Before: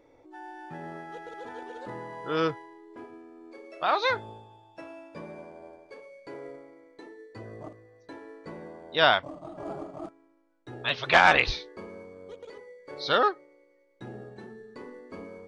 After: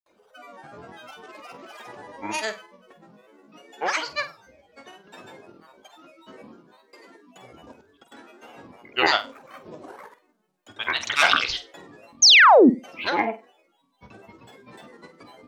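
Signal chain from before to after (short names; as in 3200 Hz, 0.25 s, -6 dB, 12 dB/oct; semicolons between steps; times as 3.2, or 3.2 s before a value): tilt +3 dB/oct; grains, pitch spread up and down by 12 st; painted sound fall, 12.22–12.7, 210–6800 Hz -12 dBFS; flutter echo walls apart 8.2 m, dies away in 0.25 s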